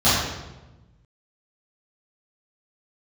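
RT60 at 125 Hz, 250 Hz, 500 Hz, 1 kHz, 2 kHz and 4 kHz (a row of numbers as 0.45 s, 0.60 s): 1.8 s, 1.5 s, 1.2 s, 1.0 s, 0.85 s, 0.80 s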